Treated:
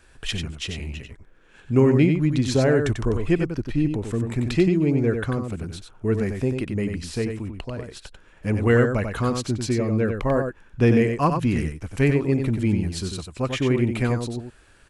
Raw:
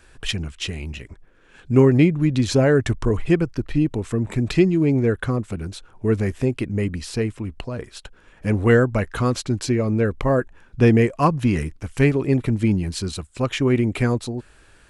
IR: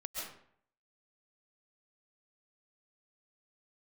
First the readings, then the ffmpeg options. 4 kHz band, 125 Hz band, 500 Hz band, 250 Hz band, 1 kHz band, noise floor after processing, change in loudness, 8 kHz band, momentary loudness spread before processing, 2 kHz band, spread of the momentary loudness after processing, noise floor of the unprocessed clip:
-2.0 dB, -2.0 dB, -2.0 dB, -2.0 dB, -2.0 dB, -53 dBFS, -2.0 dB, -2.0 dB, 14 LU, -2.0 dB, 13 LU, -52 dBFS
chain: -af "aecho=1:1:93:0.501,volume=-3dB"

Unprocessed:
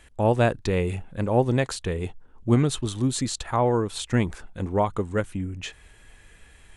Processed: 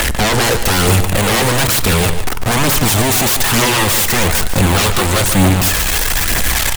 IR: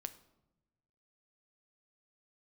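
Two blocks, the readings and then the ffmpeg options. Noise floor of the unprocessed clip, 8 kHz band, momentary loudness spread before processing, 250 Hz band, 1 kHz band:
-53 dBFS, +21.5 dB, 11 LU, +8.5 dB, +12.0 dB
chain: -filter_complex "[0:a]aeval=exprs='val(0)+0.5*0.0473*sgn(val(0))':c=same,lowshelf=f=200:g=-9,acrossover=split=390|4800[a][b][c];[a]alimiter=level_in=1dB:limit=-24dB:level=0:latency=1,volume=-1dB[d];[c]dynaudnorm=f=430:g=3:m=16.5dB[e];[d][b][e]amix=inputs=3:normalize=0,aeval=exprs='0.376*sin(PI/2*8.91*val(0)/0.376)':c=same,aphaser=in_gain=1:out_gain=1:delay=2.8:decay=0.37:speed=1.1:type=triangular,asplit=2[f][g];[g]adelay=145.8,volume=-9dB,highshelf=f=4k:g=-3.28[h];[f][h]amix=inputs=2:normalize=0,asplit=2[i][j];[1:a]atrim=start_sample=2205,asetrate=33516,aresample=44100[k];[j][k]afir=irnorm=-1:irlink=0,volume=2dB[l];[i][l]amix=inputs=2:normalize=0,volume=-8.5dB"

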